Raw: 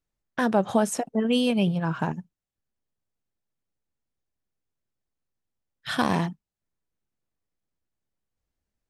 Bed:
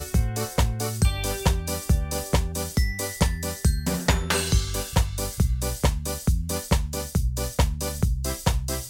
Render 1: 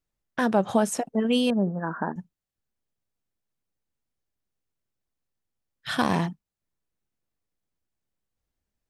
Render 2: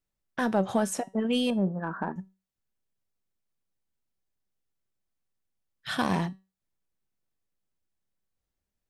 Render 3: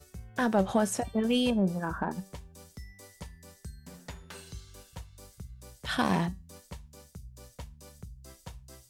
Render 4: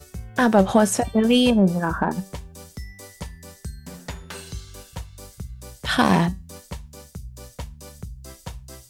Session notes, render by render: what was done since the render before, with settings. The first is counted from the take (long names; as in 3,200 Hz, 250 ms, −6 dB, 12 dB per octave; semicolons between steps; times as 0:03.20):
0:01.50–0:02.16: linear-phase brick-wall band-pass 170–1,900 Hz
in parallel at −9 dB: soft clipping −23 dBFS, distortion −9 dB; on the sum: tuned comb filter 190 Hz, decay 0.29 s, harmonics all, mix 50%
mix in bed −22.5 dB
level +9.5 dB